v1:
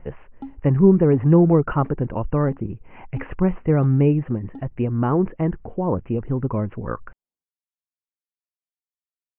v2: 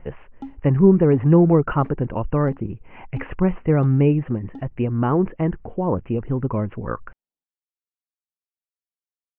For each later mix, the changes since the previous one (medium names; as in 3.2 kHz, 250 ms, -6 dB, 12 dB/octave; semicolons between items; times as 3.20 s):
master: remove distance through air 230 m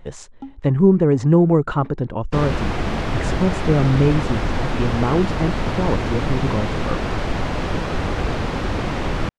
speech: remove steep low-pass 2.9 kHz 96 dB/octave; second sound: unmuted